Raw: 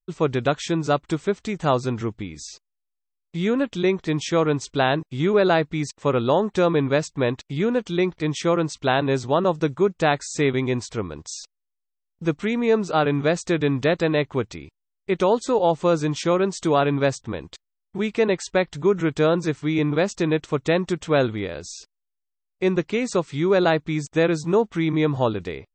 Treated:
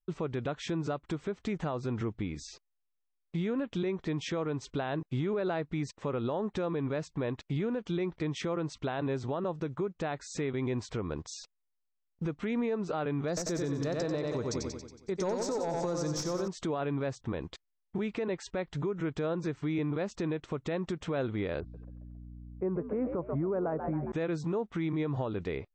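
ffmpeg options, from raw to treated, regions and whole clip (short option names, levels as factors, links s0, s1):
-filter_complex "[0:a]asettb=1/sr,asplit=3[s0][s1][s2];[s0]atrim=end=13.284[s3];[s1]atrim=start=13.28:end=16.48,asetpts=PTS-STARTPTS,afade=t=in:d=0.004:c=qsin,afade=t=out:st=3.196:d=0.004:c=qsin,highshelf=f=4000:t=q:w=3:g=12,aeval=exprs='clip(val(0),-1,0.188)':c=same,aecho=1:1:92|184|276|368|460|552|644:0.501|0.266|0.141|0.0746|0.0395|0.021|0.0111,atrim=end_sample=141120[s4];[s2]atrim=start=16.476[s5];[s3][s4]acrossfade=d=0.004:c1=hsin:c2=qsin[s6];[s6][s5]acrossfade=d=0.004:c1=qsin:c2=hsin,asettb=1/sr,asplit=3[s7][s8][s9];[s7]atrim=end=21.604[s10];[s8]atrim=start=21.6:end=24.12,asetpts=PTS-STARTPTS,afade=t=in:d=0.004:c=qsin,afade=t=out:st=2.516:d=0.004:c=qsin,lowpass=f=1300:w=0.5412,lowpass=f=1300:w=1.3066,asplit=5[s11][s12][s13][s14][s15];[s12]adelay=136,afreqshift=67,volume=0.251[s16];[s13]adelay=272,afreqshift=134,volume=0.108[s17];[s14]adelay=408,afreqshift=201,volume=0.0462[s18];[s15]adelay=544,afreqshift=268,volume=0.02[s19];[s11][s16][s17][s18][s19]amix=inputs=5:normalize=0,atrim=end_sample=111132,aeval=exprs='val(0)+0.00562*(sin(2*PI*60*n/s)+sin(2*PI*2*60*n/s)/2+sin(2*PI*3*60*n/s)/3+sin(2*PI*4*60*n/s)/4+sin(2*PI*5*60*n/s)/5)':c=same[s20];[s9]atrim=start=24.116[s21];[s10][s20]acrossfade=d=0.004:c1=hsin:c2=qsin[s22];[s22][s21]acrossfade=d=0.004:c1=qsin:c2=hsin,aemphasis=mode=reproduction:type=75kf,acompressor=threshold=0.0501:ratio=6,alimiter=limit=0.0631:level=0:latency=1:release=78"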